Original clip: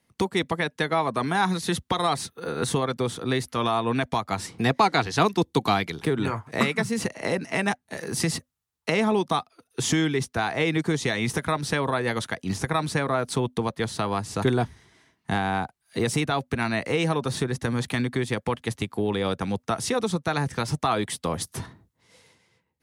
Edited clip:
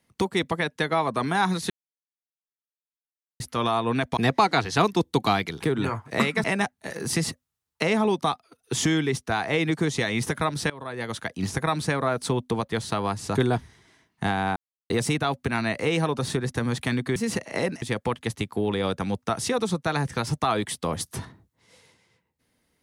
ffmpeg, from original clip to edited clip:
-filter_complex "[0:a]asplit=10[s0][s1][s2][s3][s4][s5][s6][s7][s8][s9];[s0]atrim=end=1.7,asetpts=PTS-STARTPTS,afade=t=out:st=1.696:d=0.004:c=hsin[s10];[s1]atrim=start=1.7:end=3.4,asetpts=PTS-STARTPTS,volume=0[s11];[s2]atrim=start=3.4:end=4.172,asetpts=PTS-STARTPTS,afade=t=in:d=0.004:c=hsin[s12];[s3]atrim=start=4.578:end=6.852[s13];[s4]atrim=start=7.508:end=11.77,asetpts=PTS-STARTPTS,afade=t=out:st=4.258:d=0.004:c=hsin:silence=0.0891251[s14];[s5]atrim=start=11.77:end=15.63,asetpts=PTS-STARTPTS,afade=t=in:d=0.67:silence=0.0891251,afade=t=out:st=3.856:d=0.004:c=hsin[s15];[s6]atrim=start=15.63:end=15.97,asetpts=PTS-STARTPTS,volume=0[s16];[s7]atrim=start=15.97:end=18.232,asetpts=PTS-STARTPTS,afade=t=in:d=0.004:c=hsin[s17];[s8]atrim=start=6.848:end=7.512[s18];[s9]atrim=start=18.228[s19];[s10][s11][s12]concat=n=3:v=0:a=1[s20];[s20][s13]acrossfade=d=0.004:c1=hsin:c2=hsin[s21];[s14][s15][s16][s17]concat=n=4:v=0:a=1[s22];[s21][s22]acrossfade=d=0.004:c1=hsin:c2=hsin[s23];[s23][s18]acrossfade=d=0.004:c1=hsin:c2=hsin[s24];[s24][s19]acrossfade=d=0.004:c1=hsin:c2=hsin"

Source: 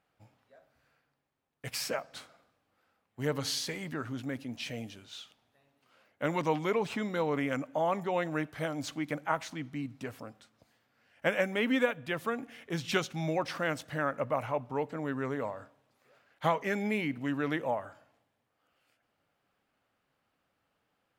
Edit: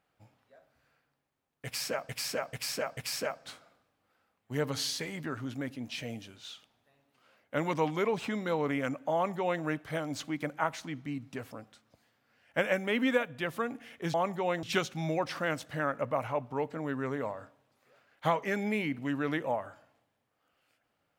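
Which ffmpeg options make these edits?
-filter_complex "[0:a]asplit=6[s0][s1][s2][s3][s4][s5];[s0]atrim=end=2.092[s6];[s1]atrim=start=1.648:end=2.092[s7];[s2]atrim=start=1.648:end=2.092[s8];[s3]atrim=start=1.648:end=12.822[s9];[s4]atrim=start=7.818:end=8.312[s10];[s5]atrim=start=12.818[s11];[s6][s7]acrossfade=d=0.004:c1=hsin:c2=hsin[s12];[s12][s8]acrossfade=d=0.004:c1=hsin:c2=hsin[s13];[s13][s9]acrossfade=d=0.004:c1=hsin:c2=hsin[s14];[s14][s10]acrossfade=d=0.004:c1=hsin:c2=hsin[s15];[s15][s11]acrossfade=d=0.004:c1=hsin:c2=hsin"

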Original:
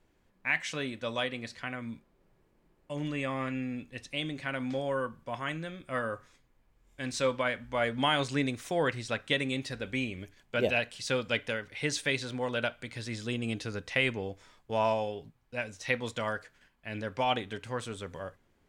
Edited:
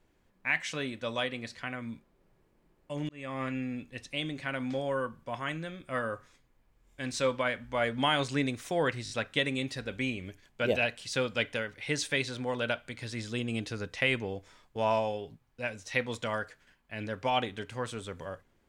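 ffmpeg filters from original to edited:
-filter_complex "[0:a]asplit=5[s0][s1][s2][s3][s4];[s0]atrim=end=3.09,asetpts=PTS-STARTPTS,afade=t=out:st=3.086:d=0.004:c=hsin[s5];[s1]atrim=start=3.09:end=9.062,asetpts=PTS-STARTPTS,afade=t=in:d=0.35[s6];[s2]atrim=start=9.038:end=9.062[s7];[s3]atrim=start=9.038:end=9.062[s8];[s4]atrim=start=9.038[s9];[s5][s6]concat=n=2:v=0:a=1[s10];[s10][s7]acrossfade=d=0.004:c1=hsin:c2=hsin[s11];[s11][s8]acrossfade=d=0.004:c1=hsin:c2=hsin[s12];[s12][s9]acrossfade=d=0.004:c1=hsin:c2=hsin"

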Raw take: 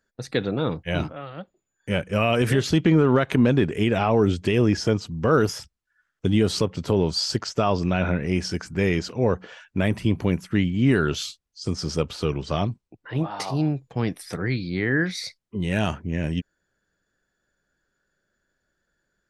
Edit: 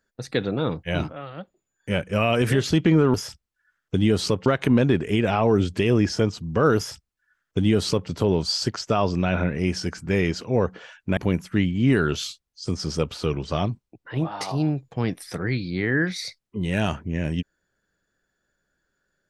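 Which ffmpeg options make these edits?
-filter_complex "[0:a]asplit=4[s0][s1][s2][s3];[s0]atrim=end=3.142[s4];[s1]atrim=start=5.448:end=6.772[s5];[s2]atrim=start=3.138:end=9.852[s6];[s3]atrim=start=10.158[s7];[s4][s5]acrossfade=d=0.004:c1=hsin:c2=hsin[s8];[s8][s6]acrossfade=d=0.004:c1=hsin:c2=hsin[s9];[s9][s7]acrossfade=d=0.004:c1=hsin:c2=hsin"

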